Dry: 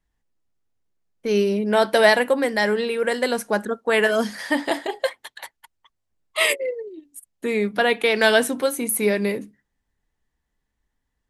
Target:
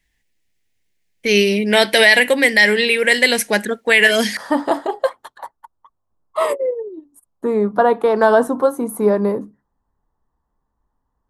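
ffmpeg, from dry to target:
-af "asetnsamples=n=441:p=0,asendcmd='4.37 highshelf g -8;5.37 highshelf g -13.5',highshelf=f=1.6k:t=q:w=3:g=7.5,alimiter=level_in=5.5dB:limit=-1dB:release=50:level=0:latency=1,volume=-1dB"

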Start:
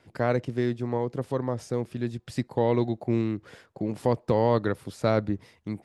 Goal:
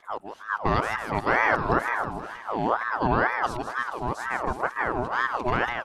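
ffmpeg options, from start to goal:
-af "areverse,aecho=1:1:159|318|477|636|795|954|1113:0.473|0.27|0.154|0.0876|0.0499|0.0285|0.0162,aeval=exprs='val(0)*sin(2*PI*970*n/s+970*0.5/2.1*sin(2*PI*2.1*n/s))':c=same,volume=2.5dB"

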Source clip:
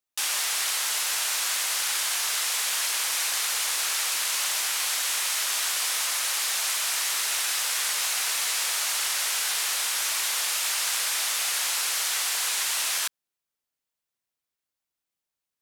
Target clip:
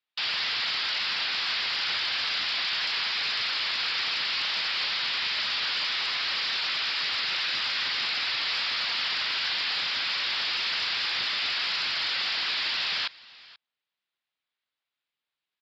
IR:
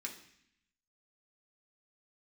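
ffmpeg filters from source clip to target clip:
-af "highpass=f=73:p=1,tiltshelf=f=970:g=-5.5,aresample=11025,asoftclip=type=tanh:threshold=-25dB,aresample=44100,aecho=1:1:483:0.0841,volume=1.5dB" -ar 32000 -c:a libspeex -b:a 36k

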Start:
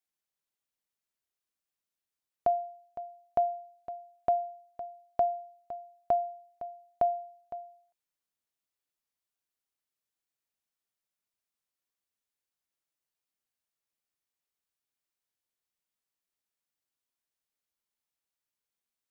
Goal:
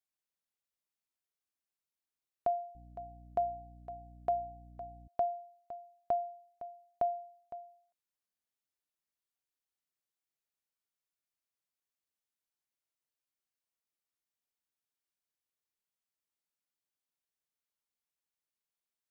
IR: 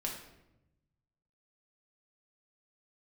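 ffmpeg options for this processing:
-filter_complex "[0:a]asettb=1/sr,asplit=3[a][b][c];[a]atrim=end=2.754[d];[b]atrim=start=2.75:end=5.08,asetpts=PTS-STARTPTS,afade=t=in:d=0.004:c=qsin,afade=t=out:st=2.326:d=0.004:c=qsin,aeval=exprs='val(0)+0.00398*(sin(2*PI*60*n/s)+sin(2*PI*2*60*n/s)/2+sin(2*PI*3*60*n/s)/3+sin(2*PI*4*60*n/s)/4+sin(2*PI*5*60*n/s)/5)':c=same[e];[c]atrim=start=5.076[f];[d][e]acrossfade=d=0.004:c1=hsin:c2=qsin[g];[g][f]acrossfade=d=0.004:c1=qsin:c2=hsin,volume=-5dB"

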